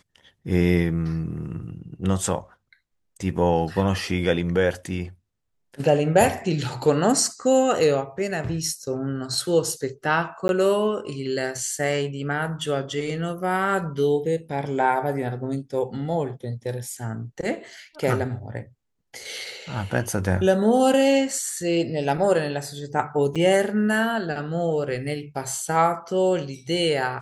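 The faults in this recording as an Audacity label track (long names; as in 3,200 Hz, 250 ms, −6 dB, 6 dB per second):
10.480000	10.490000	drop-out 11 ms
23.350000	23.360000	drop-out 6.4 ms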